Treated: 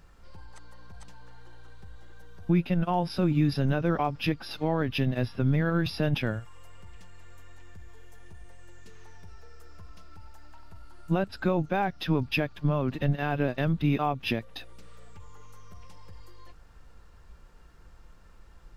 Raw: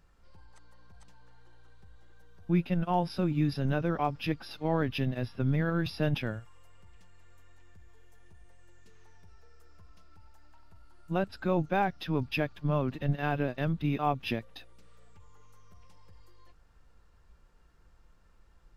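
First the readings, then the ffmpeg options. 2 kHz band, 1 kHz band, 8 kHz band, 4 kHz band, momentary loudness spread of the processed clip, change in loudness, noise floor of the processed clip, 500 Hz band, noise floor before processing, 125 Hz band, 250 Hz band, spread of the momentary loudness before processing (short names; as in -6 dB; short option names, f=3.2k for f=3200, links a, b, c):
+3.0 dB, +1.0 dB, n/a, +4.5 dB, 6 LU, +3.0 dB, -52 dBFS, +2.5 dB, -61 dBFS, +3.5 dB, +3.5 dB, 6 LU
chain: -af "alimiter=limit=-24dB:level=0:latency=1:release=387,volume=8.5dB"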